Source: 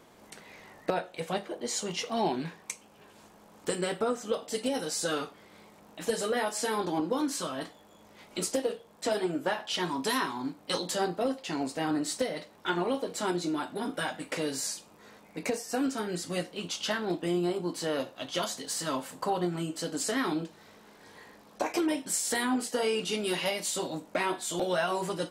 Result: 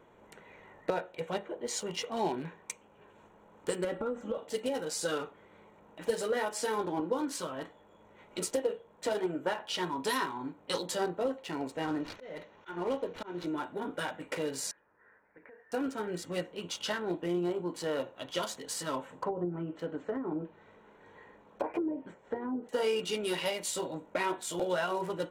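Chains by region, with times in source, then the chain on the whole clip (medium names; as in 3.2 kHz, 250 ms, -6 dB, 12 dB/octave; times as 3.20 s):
3.84–4.38 s: tilt EQ -2 dB/octave + comb 3.6 ms, depth 70% + compression 8:1, threshold -27 dBFS
11.82–13.47 s: CVSD coder 32 kbps + slow attack 217 ms + tape noise reduction on one side only encoder only
14.71–15.72 s: four-pole ladder low-pass 1.8 kHz, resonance 80% + compression 12:1, threshold -46 dBFS + peaking EQ 180 Hz -6.5 dB 0.62 oct
19.05–22.69 s: low-pass that closes with the level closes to 450 Hz, closed at -24.5 dBFS + treble shelf 5.6 kHz -4 dB
whole clip: local Wiener filter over 9 samples; comb 2.1 ms, depth 30%; trim -2.5 dB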